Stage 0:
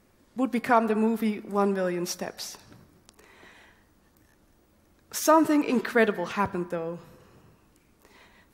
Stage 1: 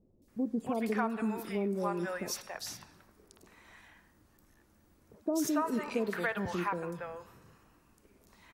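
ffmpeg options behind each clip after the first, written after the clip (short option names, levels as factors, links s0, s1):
-filter_complex "[0:a]acrossover=split=590|3500[s0][s1][s2];[s2]adelay=220[s3];[s1]adelay=280[s4];[s0][s4][s3]amix=inputs=3:normalize=0,acompressor=threshold=0.0562:ratio=5,volume=0.708"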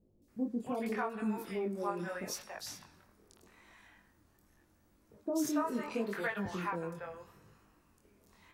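-af "flanger=delay=19:depth=5.8:speed=0.79"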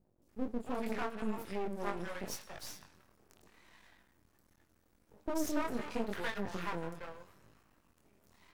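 -af "aeval=exprs='max(val(0),0)':c=same,volume=1.26"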